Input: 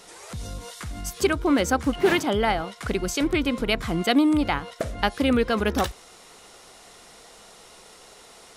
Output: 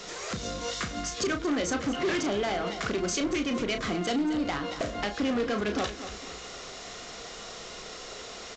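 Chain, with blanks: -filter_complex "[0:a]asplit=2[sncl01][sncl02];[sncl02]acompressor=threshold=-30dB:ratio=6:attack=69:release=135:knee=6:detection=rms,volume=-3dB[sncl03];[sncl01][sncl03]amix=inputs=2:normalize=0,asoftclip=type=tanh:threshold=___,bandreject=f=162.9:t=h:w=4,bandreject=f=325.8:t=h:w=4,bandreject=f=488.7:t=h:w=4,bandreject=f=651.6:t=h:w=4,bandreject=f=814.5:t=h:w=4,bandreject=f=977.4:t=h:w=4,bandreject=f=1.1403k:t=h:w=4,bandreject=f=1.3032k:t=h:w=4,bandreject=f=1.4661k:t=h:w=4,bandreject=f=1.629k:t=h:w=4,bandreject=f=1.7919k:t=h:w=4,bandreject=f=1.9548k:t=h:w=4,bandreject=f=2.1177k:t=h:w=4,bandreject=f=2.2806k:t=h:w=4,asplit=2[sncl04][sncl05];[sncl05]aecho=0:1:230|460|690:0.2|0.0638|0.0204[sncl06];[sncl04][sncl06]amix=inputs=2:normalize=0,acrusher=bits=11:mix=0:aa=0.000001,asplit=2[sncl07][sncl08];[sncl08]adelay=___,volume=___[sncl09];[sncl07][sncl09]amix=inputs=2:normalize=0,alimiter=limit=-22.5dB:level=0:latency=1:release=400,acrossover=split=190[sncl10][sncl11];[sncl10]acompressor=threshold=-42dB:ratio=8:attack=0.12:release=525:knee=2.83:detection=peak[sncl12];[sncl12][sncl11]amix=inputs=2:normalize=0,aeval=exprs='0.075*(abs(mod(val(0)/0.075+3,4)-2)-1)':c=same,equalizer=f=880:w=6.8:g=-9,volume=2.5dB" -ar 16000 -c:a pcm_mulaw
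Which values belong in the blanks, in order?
-21dB, 34, -8dB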